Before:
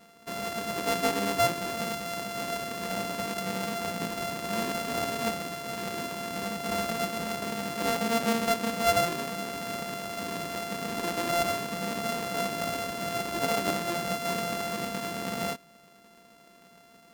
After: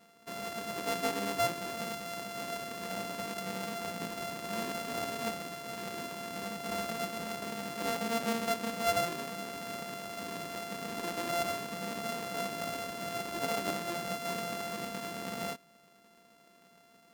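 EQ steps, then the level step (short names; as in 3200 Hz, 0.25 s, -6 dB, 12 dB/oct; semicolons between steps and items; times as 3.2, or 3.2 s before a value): low shelf 71 Hz -7.5 dB; -5.5 dB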